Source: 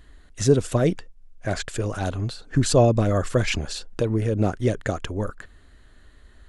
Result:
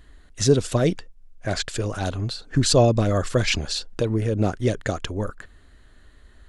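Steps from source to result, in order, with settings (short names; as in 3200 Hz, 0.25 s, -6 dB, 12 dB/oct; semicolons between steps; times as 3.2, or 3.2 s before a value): dynamic EQ 4400 Hz, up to +7 dB, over -45 dBFS, Q 1.1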